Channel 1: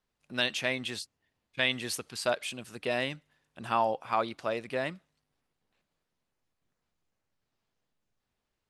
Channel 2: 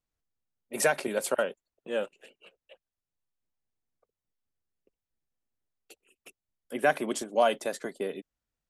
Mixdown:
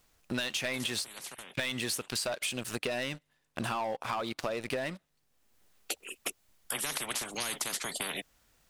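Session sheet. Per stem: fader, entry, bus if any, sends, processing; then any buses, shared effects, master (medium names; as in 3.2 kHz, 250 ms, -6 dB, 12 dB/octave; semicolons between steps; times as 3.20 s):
+2.0 dB, 0.00 s, no send, treble shelf 5.5 kHz +7 dB; waveshaping leveller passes 3; compression, threshold -23 dBFS, peak gain reduction 7.5 dB
+2.5 dB, 0.00 s, no send, bass shelf 450 Hz -5.5 dB; spectrum-flattening compressor 10:1; auto duck -16 dB, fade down 1.30 s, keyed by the first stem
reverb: none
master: compression, threshold -31 dBFS, peak gain reduction 11 dB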